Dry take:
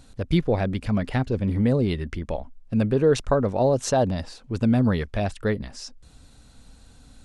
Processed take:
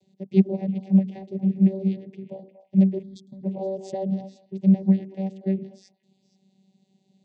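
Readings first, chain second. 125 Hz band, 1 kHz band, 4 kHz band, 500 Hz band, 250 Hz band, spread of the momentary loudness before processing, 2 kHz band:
−1.5 dB, −13.0 dB, below −15 dB, −8.0 dB, +3.0 dB, 12 LU, below −15 dB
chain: channel vocoder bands 16, saw 192 Hz
echo through a band-pass that steps 118 ms, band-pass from 310 Hz, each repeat 1.4 octaves, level −7 dB
harmonic generator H 7 −33 dB, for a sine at −4 dBFS
gain on a spectral selection 0:03.03–0:03.43, 300–3,200 Hz −27 dB
Butterworth band-reject 1,300 Hz, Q 0.9
expander for the loud parts 1.5 to 1, over −26 dBFS
level +4 dB

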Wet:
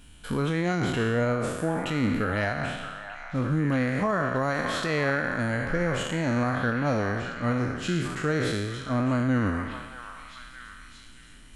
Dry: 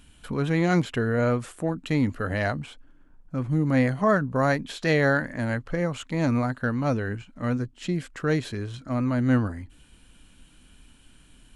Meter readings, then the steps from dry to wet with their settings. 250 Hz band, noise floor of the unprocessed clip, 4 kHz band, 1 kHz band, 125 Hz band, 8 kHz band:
−1.5 dB, −55 dBFS, +3.0 dB, +0.5 dB, −2.0 dB, +3.5 dB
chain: peak hold with a decay on every bin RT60 1.13 s
brickwall limiter −17 dBFS, peak gain reduction 9 dB
on a send: echo through a band-pass that steps 621 ms, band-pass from 1,100 Hz, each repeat 0.7 octaves, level −6 dB

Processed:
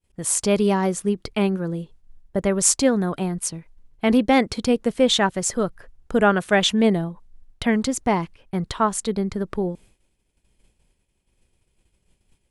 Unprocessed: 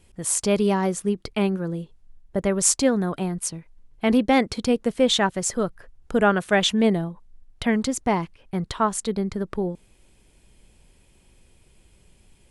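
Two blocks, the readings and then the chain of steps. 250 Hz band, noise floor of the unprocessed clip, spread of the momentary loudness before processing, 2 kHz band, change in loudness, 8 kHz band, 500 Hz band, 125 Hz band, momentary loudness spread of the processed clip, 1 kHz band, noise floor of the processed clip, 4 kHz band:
+1.5 dB, −58 dBFS, 11 LU, +1.5 dB, +1.5 dB, +1.5 dB, +1.5 dB, +1.5 dB, 11 LU, +1.5 dB, −70 dBFS, +1.5 dB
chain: downward expander −45 dBFS
level +1.5 dB

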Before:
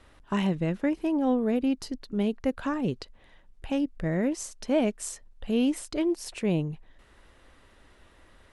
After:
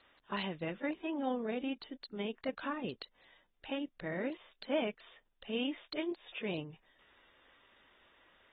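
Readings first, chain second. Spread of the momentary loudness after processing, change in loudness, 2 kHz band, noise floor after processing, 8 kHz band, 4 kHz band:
12 LU, −10.5 dB, −3.0 dB, −76 dBFS, below −40 dB, −2.5 dB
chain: RIAA equalisation recording
level −7 dB
AAC 16 kbit/s 32,000 Hz

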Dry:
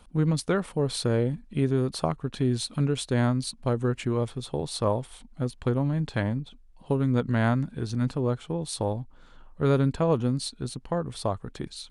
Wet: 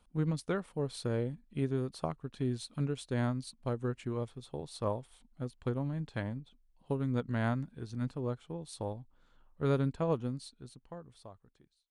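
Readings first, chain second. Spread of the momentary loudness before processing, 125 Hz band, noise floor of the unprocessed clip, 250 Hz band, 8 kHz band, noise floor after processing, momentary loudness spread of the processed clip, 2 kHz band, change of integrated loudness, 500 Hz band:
9 LU, −9.0 dB, −53 dBFS, −9.0 dB, −13.5 dB, −70 dBFS, 12 LU, −8.5 dB, −8.5 dB, −8.5 dB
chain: fade-out on the ending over 1.82 s
expander for the loud parts 1.5 to 1, over −34 dBFS
level −6.5 dB

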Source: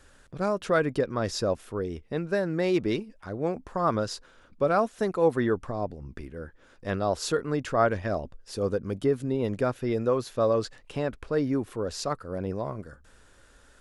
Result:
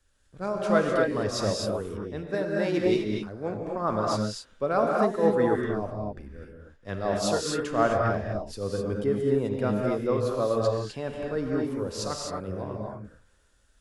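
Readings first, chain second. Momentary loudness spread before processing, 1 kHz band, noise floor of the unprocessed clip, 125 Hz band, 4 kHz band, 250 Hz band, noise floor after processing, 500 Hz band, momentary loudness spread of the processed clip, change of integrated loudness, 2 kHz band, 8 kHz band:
12 LU, +1.0 dB, −57 dBFS, +0.5 dB, +2.5 dB, +1.0 dB, −63 dBFS, +1.0 dB, 12 LU, +1.0 dB, +0.5 dB, +3.0 dB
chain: reverb whose tail is shaped and stops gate 280 ms rising, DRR −1 dB
multiband upward and downward expander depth 40%
level −3 dB

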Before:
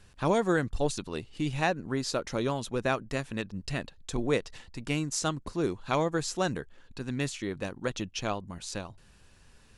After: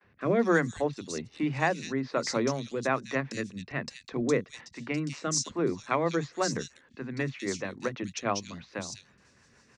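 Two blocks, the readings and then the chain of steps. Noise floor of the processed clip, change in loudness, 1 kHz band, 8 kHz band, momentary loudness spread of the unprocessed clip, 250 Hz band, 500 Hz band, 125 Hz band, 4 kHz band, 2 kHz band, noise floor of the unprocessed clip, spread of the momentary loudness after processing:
−63 dBFS, +1.0 dB, +0.5 dB, +2.0 dB, 10 LU, +1.0 dB, +1.0 dB, −1.5 dB, −1.0 dB, +2.0 dB, −58 dBFS, 11 LU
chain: loudspeaker in its box 130–7,700 Hz, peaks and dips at 240 Hz +4 dB, 1,100 Hz +4 dB, 2,000 Hz +7 dB, 3,100 Hz −5 dB, 5,800 Hz +5 dB
rotating-speaker cabinet horn 1.2 Hz, later 6.3 Hz, at 0:04.70
noise gate with hold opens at −55 dBFS
three-band delay without the direct sound mids, lows, highs 30/200 ms, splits 230/3,100 Hz
level +3 dB

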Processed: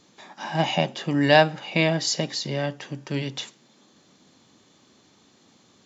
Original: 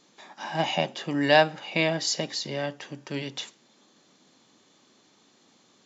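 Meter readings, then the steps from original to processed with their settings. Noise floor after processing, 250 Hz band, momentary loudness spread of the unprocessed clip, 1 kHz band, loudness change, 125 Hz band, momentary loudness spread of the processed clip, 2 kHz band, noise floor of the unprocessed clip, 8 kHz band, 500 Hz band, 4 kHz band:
−59 dBFS, +4.5 dB, 17 LU, +2.5 dB, +3.0 dB, +7.5 dB, 17 LU, +2.0 dB, −62 dBFS, can't be measured, +2.5 dB, +2.0 dB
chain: parametric band 68 Hz +12.5 dB 2.1 octaves
level +2 dB

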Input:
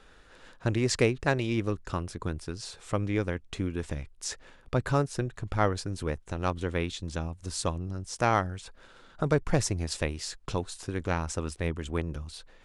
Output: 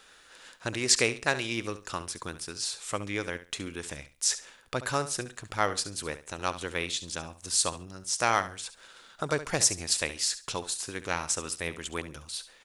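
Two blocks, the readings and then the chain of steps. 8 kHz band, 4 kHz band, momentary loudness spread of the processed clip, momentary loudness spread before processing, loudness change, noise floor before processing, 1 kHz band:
+10.0 dB, +7.5 dB, 13 LU, 11 LU, +1.0 dB, −56 dBFS, 0.0 dB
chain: spectral tilt +3.5 dB per octave
on a send: repeating echo 69 ms, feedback 23%, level −13.5 dB

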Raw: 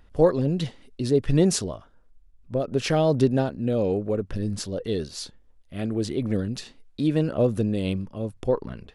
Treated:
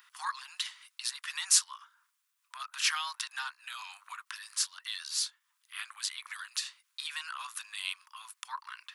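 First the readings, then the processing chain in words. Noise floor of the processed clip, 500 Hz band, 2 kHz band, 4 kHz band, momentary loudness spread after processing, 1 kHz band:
−79 dBFS, below −40 dB, +2.5 dB, +3.0 dB, 15 LU, −5.5 dB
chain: Butterworth high-pass 1,000 Hz 72 dB per octave
high-shelf EQ 9,000 Hz +10.5 dB
in parallel at +1.5 dB: downward compressor, threshold −48 dBFS, peak gain reduction 25.5 dB

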